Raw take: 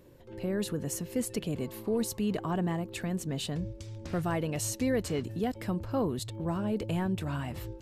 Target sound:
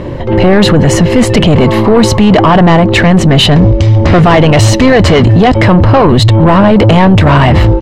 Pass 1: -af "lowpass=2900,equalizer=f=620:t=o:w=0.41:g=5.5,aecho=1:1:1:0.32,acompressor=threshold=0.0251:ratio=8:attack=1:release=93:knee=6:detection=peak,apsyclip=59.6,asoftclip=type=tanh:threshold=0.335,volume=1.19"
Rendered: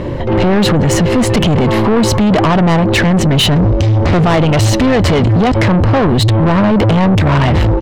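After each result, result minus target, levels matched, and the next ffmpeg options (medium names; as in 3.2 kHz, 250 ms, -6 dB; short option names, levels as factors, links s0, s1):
compression: peak gain reduction +10 dB; saturation: distortion +10 dB
-af "lowpass=2900,equalizer=f=620:t=o:w=0.41:g=5.5,aecho=1:1:1:0.32,apsyclip=59.6,asoftclip=type=tanh:threshold=0.335,volume=1.19"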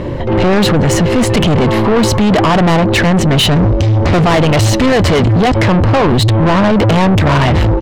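saturation: distortion +9 dB
-af "lowpass=2900,equalizer=f=620:t=o:w=0.41:g=5.5,aecho=1:1:1:0.32,apsyclip=59.6,asoftclip=type=tanh:threshold=0.841,volume=1.19"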